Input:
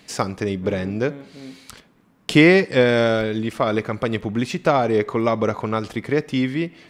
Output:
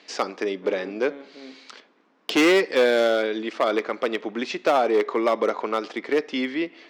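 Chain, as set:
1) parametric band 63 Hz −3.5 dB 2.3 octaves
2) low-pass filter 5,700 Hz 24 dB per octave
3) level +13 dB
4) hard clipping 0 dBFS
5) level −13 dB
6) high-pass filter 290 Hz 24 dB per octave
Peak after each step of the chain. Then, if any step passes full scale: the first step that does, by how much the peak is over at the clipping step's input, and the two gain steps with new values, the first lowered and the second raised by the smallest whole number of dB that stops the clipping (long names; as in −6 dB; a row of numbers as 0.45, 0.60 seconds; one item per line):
−3.0, −3.0, +10.0, 0.0, −13.0, −6.5 dBFS
step 3, 10.0 dB
step 3 +3 dB, step 5 −3 dB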